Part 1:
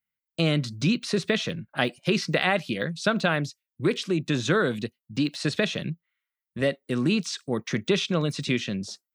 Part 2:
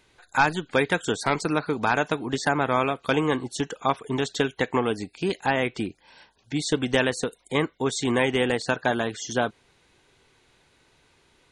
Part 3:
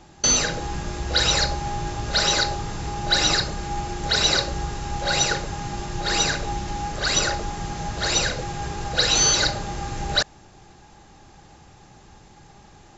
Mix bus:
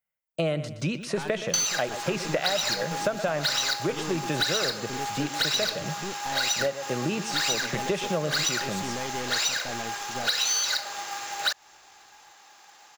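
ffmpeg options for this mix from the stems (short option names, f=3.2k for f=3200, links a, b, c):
-filter_complex "[0:a]equalizer=f=100:t=o:w=0.67:g=-4,equalizer=f=250:t=o:w=0.67:g=-7,equalizer=f=630:t=o:w=0.67:g=10,equalizer=f=4k:t=o:w=0.67:g=-9,volume=0dB,asplit=2[a][b];[b]volume=-14.5dB[c];[1:a]aeval=exprs='(tanh(17.8*val(0)+0.7)-tanh(0.7))/17.8':c=same,adelay=800,volume=-6dB[d];[2:a]highpass=1k,acrusher=bits=3:mode=log:mix=0:aa=0.000001,adelay=1300,volume=2.5dB[e];[c]aecho=0:1:120|240|360|480:1|0.3|0.09|0.027[f];[a][d][e][f]amix=inputs=4:normalize=0,acompressor=threshold=-23dB:ratio=6"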